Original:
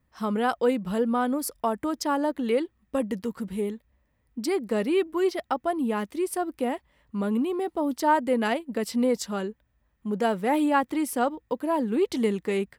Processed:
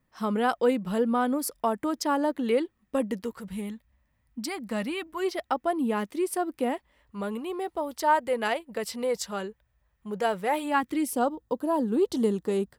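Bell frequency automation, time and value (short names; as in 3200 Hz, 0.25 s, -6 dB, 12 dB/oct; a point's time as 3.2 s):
bell -14 dB 0.68 oct
3.02 s 72 Hz
3.56 s 400 Hz
5.08 s 400 Hz
5.81 s 67 Hz
6.74 s 67 Hz
7.19 s 260 Hz
10.58 s 260 Hz
11.23 s 2200 Hz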